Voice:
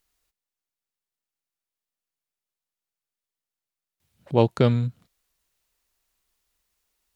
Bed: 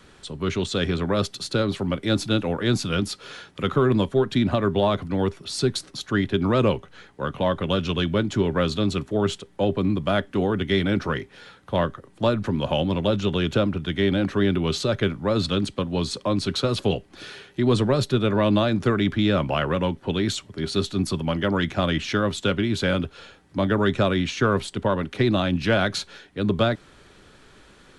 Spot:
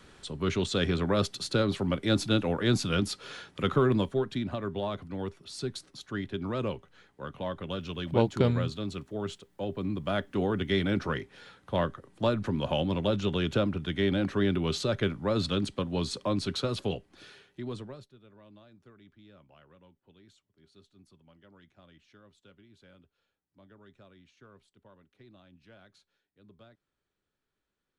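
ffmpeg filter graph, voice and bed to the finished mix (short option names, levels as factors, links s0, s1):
-filter_complex "[0:a]adelay=3800,volume=0.501[s0];[1:a]volume=1.41,afade=t=out:st=3.72:d=0.72:silence=0.375837,afade=t=in:st=9.67:d=0.79:silence=0.473151,afade=t=out:st=16.28:d=1.82:silence=0.0334965[s1];[s0][s1]amix=inputs=2:normalize=0"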